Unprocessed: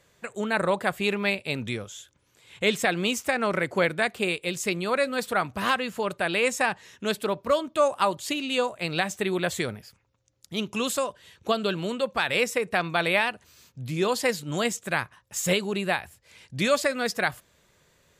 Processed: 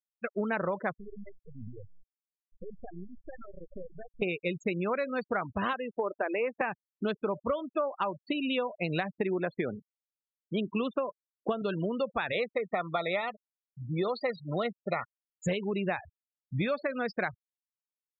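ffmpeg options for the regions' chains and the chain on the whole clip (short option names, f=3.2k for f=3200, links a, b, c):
-filter_complex "[0:a]asettb=1/sr,asplit=3[a][b][c];[a]atrim=end=0.994[d];[b]atrim=start=0.99:end=4.22,asetpts=PTS-STARTPTS,afade=t=in:d=0.004:c=qsin,afade=t=out:st=3.226:d=0.004:c=qsin,equalizer=f=93:t=o:w=1.3:g=2.5,acompressor=threshold=-38dB:ratio=4:attack=3.2:release=140:knee=1:detection=peak,aeval=exprs='max(val(0),0)':c=same[e];[c]atrim=start=4.216[f];[d][e]acrossfade=d=0.004:c1=hsin:c2=qsin[g];[g][f]acrossfade=d=0.004:c1=qsin:c2=hsin,asettb=1/sr,asplit=3[h][i][j];[h]atrim=end=5.734[k];[i]atrim=start=5.73:end=6.61,asetpts=PTS-STARTPTS,afade=t=in:d=0.004:c=qsin,afade=t=out:st=0.876:d=0.004:c=qsin,highpass=f=270:w=0.5412,highpass=f=270:w=1.3066,highshelf=f=2.4k:g=-10.5[l];[j]atrim=start=6.606[m];[k][l]acrossfade=d=0.004:c1=hsin:c2=qsin[n];[n][m]acrossfade=d=0.004:c1=qsin:c2=hsin,asettb=1/sr,asplit=3[o][p][q];[o]atrim=end=9.154[r];[p]atrim=start=9.15:end=11.62,asetpts=PTS-STARTPTS,afade=t=in:d=0.004:c=qsin,afade=t=out:st=2.466:d=0.004:c=qsin,highpass=230,lowpass=4.8k,lowshelf=f=310:g=7.5[s];[q]atrim=start=11.616[t];[r][s]acrossfade=d=0.004:c1=hsin:c2=qsin[u];[u][t]acrossfade=d=0.004:c1=qsin:c2=hsin,asettb=1/sr,asplit=3[v][w][x];[v]atrim=end=12.324[y];[w]atrim=start=12.32:end=15.42,asetpts=PTS-STARTPTS,afade=t=in:d=0.004:c=qsin,afade=t=out:st=3.096:d=0.004:c=qsin,asuperstop=centerf=1600:order=20:qfactor=4.9,highpass=190,equalizer=f=290:t=q:w=4:g=-9,equalizer=f=650:t=q:w=4:g=3,equalizer=f=940:t=q:w=4:g=-4,equalizer=f=1.5k:t=q:w=4:g=6,equalizer=f=2.7k:t=q:w=4:g=-7,equalizer=f=3.9k:t=q:w=4:g=6,lowpass=f=5.5k:w=0.5412,lowpass=f=5.5k:w=1.3066[z];[x]atrim=start=15.416[aa];[y][z]acrossfade=d=0.004:c1=hsin:c2=qsin[ab];[ab][aa]acrossfade=d=0.004:c1=qsin:c2=hsin,aemphasis=mode=reproduction:type=75kf,afftfilt=real='re*gte(hypot(re,im),0.0316)':imag='im*gte(hypot(re,im),0.0316)':win_size=1024:overlap=0.75,acompressor=threshold=-31dB:ratio=10,volume=4dB"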